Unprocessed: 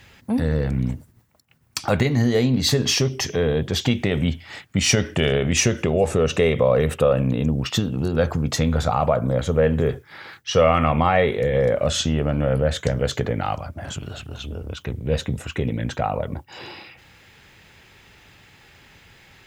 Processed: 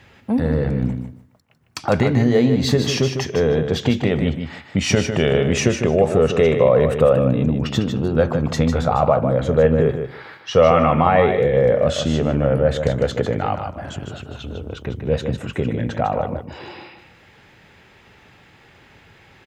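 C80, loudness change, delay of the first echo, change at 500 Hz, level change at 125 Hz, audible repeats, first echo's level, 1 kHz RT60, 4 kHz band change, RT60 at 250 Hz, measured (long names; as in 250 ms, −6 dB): no reverb audible, +3.0 dB, 152 ms, +4.5 dB, +1.5 dB, 2, −7.5 dB, no reverb audible, −2.5 dB, no reverb audible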